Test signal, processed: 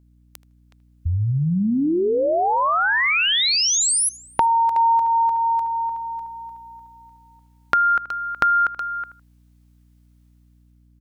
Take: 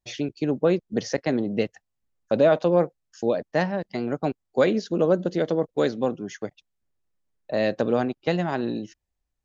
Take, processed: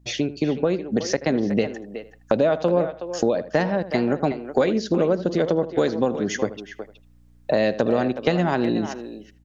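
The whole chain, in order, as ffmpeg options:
ffmpeg -i in.wav -filter_complex "[0:a]dynaudnorm=framelen=930:gausssize=3:maxgain=10dB,asplit=2[link_01][link_02];[link_02]adelay=79,lowpass=frequency=2800:poles=1,volume=-17dB,asplit=2[link_03][link_04];[link_04]adelay=79,lowpass=frequency=2800:poles=1,volume=0.16[link_05];[link_03][link_05]amix=inputs=2:normalize=0[link_06];[link_01][link_06]amix=inputs=2:normalize=0,acompressor=threshold=-27dB:ratio=4,asplit=2[link_07][link_08];[link_08]adelay=370,highpass=300,lowpass=3400,asoftclip=type=hard:threshold=-18dB,volume=-10dB[link_09];[link_07][link_09]amix=inputs=2:normalize=0,aeval=exprs='val(0)+0.000891*(sin(2*PI*60*n/s)+sin(2*PI*2*60*n/s)/2+sin(2*PI*3*60*n/s)/3+sin(2*PI*4*60*n/s)/4+sin(2*PI*5*60*n/s)/5)':channel_layout=same,volume=7.5dB" out.wav

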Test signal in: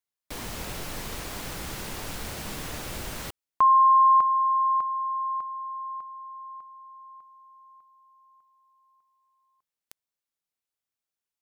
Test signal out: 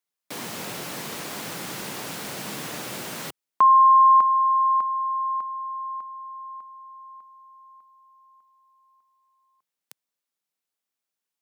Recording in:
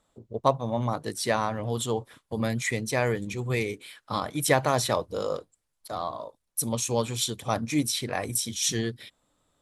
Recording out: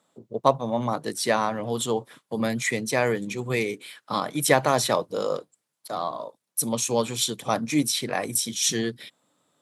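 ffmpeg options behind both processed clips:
ffmpeg -i in.wav -af "highpass=frequency=140:width=0.5412,highpass=frequency=140:width=1.3066,volume=3dB" out.wav

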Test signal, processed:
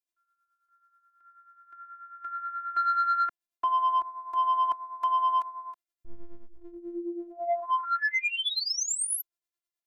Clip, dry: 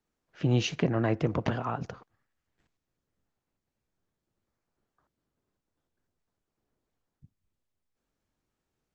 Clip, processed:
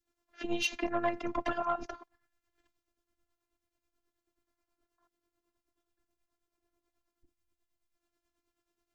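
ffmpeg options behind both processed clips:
ffmpeg -i in.wav -filter_complex "[0:a]acrossover=split=220|680|1900[link_01][link_02][link_03][link_04];[link_02]acompressor=threshold=-43dB:ratio=6[link_05];[link_01][link_05][link_03][link_04]amix=inputs=4:normalize=0,adynamicequalizer=threshold=0.00891:dfrequency=760:dqfactor=0.72:tfrequency=760:tqfactor=0.72:attack=5:release=100:ratio=0.375:range=2:mode=boostabove:tftype=bell,afftfilt=real='hypot(re,im)*cos(PI*b)':imag='0':win_size=512:overlap=0.75,tremolo=f=9.3:d=0.65,asoftclip=type=tanh:threshold=-24.5dB,lowshelf=frequency=160:gain=-3,volume=7dB" out.wav

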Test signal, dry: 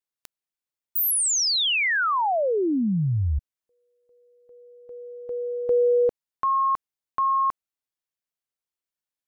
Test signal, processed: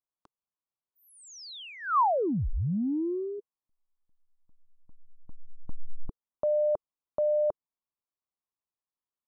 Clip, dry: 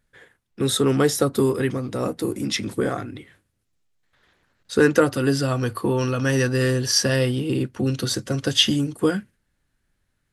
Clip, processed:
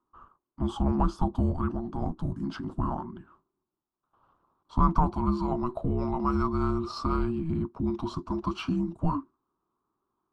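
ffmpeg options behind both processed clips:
ffmpeg -i in.wav -filter_complex "[0:a]highpass=120,lowpass=4400,afreqshift=-480,asplit=2[link_01][link_02];[link_02]asoftclip=type=tanh:threshold=-17dB,volume=-10.5dB[link_03];[link_01][link_03]amix=inputs=2:normalize=0,highshelf=frequency=1500:width_type=q:width=3:gain=-10.5,volume=-7.5dB" out.wav

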